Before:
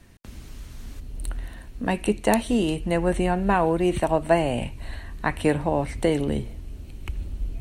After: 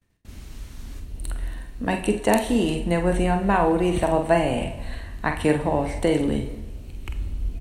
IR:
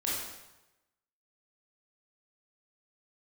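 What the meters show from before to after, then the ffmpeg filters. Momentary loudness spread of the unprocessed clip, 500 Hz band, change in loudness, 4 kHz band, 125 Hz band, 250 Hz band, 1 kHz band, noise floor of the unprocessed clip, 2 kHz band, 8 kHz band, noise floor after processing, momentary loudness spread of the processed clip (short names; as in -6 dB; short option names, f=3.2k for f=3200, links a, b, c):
19 LU, +1.0 dB, +1.0 dB, +1.5 dB, +1.0 dB, +1.5 dB, +1.5 dB, -42 dBFS, +1.5 dB, +1.5 dB, -41 dBFS, 18 LU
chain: -filter_complex "[0:a]agate=range=-33dB:threshold=-39dB:ratio=3:detection=peak,asplit=2[a][b];[b]adelay=46,volume=-7dB[c];[a][c]amix=inputs=2:normalize=0,asplit=2[d][e];[1:a]atrim=start_sample=2205,asetrate=38367,aresample=44100[f];[e][f]afir=irnorm=-1:irlink=0,volume=-15.5dB[g];[d][g]amix=inputs=2:normalize=0,volume=-1dB"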